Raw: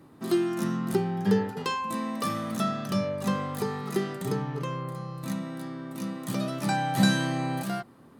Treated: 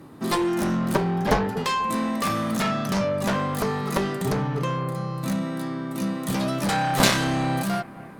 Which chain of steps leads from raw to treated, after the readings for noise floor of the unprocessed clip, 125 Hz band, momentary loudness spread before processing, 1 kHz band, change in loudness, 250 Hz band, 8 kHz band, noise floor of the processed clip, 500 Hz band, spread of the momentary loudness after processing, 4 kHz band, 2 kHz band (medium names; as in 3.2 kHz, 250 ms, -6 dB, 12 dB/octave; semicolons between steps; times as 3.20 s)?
-52 dBFS, +4.0 dB, 10 LU, +6.0 dB, +4.5 dB, +3.0 dB, +8.0 dB, -41 dBFS, +4.5 dB, 6 LU, +6.5 dB, +6.0 dB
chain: Chebyshev shaper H 6 -13 dB, 7 -6 dB, 8 -19 dB, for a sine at -9.5 dBFS; bucket-brigade echo 242 ms, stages 4096, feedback 78%, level -21.5 dB